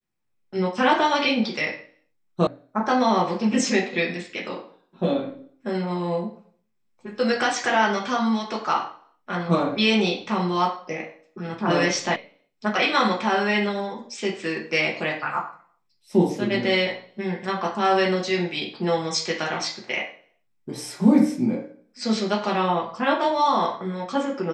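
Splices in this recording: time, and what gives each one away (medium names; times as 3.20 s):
2.47 s: sound stops dead
12.16 s: sound stops dead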